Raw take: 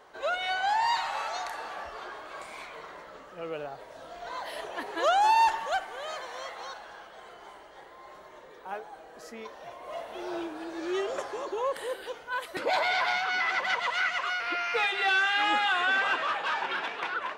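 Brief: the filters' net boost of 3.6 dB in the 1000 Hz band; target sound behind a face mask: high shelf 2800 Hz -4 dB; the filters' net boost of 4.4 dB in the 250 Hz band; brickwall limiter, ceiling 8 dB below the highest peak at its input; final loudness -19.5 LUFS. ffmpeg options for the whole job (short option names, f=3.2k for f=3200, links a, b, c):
-af "equalizer=f=250:t=o:g=7,equalizer=f=1k:t=o:g=4.5,alimiter=limit=-19dB:level=0:latency=1,highshelf=f=2.8k:g=-4,volume=10dB"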